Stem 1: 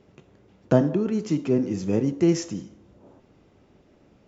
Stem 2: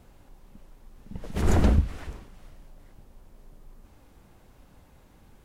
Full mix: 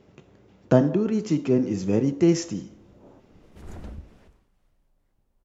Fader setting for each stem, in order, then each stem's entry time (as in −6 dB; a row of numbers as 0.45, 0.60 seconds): +1.0, −19.0 decibels; 0.00, 2.20 seconds